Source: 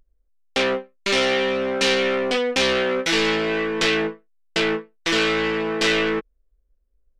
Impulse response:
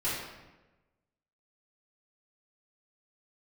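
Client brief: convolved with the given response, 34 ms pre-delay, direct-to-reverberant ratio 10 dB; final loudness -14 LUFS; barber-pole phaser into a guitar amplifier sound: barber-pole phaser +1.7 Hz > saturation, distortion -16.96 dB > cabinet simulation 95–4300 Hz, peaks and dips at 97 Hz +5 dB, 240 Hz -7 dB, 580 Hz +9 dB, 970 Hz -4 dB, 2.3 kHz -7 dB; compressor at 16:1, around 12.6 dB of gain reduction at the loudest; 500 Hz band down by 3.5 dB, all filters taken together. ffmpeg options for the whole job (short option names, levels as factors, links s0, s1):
-filter_complex "[0:a]equalizer=f=500:t=o:g=-7.5,acompressor=threshold=0.0355:ratio=16,asplit=2[s0][s1];[1:a]atrim=start_sample=2205,adelay=34[s2];[s1][s2]afir=irnorm=-1:irlink=0,volume=0.126[s3];[s0][s3]amix=inputs=2:normalize=0,asplit=2[s4][s5];[s5]afreqshift=1.7[s6];[s4][s6]amix=inputs=2:normalize=1,asoftclip=threshold=0.0398,highpass=95,equalizer=f=97:t=q:w=4:g=5,equalizer=f=240:t=q:w=4:g=-7,equalizer=f=580:t=q:w=4:g=9,equalizer=f=970:t=q:w=4:g=-4,equalizer=f=2300:t=q:w=4:g=-7,lowpass=f=4300:w=0.5412,lowpass=f=4300:w=1.3066,volume=15.8"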